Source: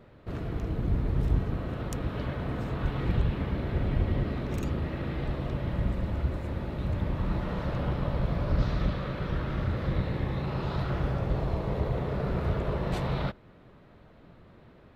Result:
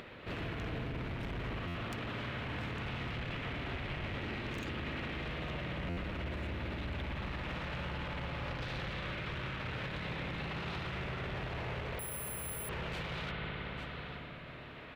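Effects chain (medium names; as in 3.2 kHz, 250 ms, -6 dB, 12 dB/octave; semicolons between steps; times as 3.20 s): upward compressor, threshold -44 dBFS; bass shelf 100 Hz -8 dB; delay 855 ms -20 dB; hard clipper -35 dBFS, distortion -7 dB; 11.99–12.69 s: careless resampling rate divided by 4×, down none, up zero stuff; peaking EQ 2.6 kHz +13.5 dB 1.7 oct; spring tank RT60 3.6 s, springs 56 ms, chirp 45 ms, DRR 3 dB; peak limiter -30 dBFS, peak gain reduction 12.5 dB; buffer glitch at 1.67/5.89 s, samples 512, times 6; trim -1.5 dB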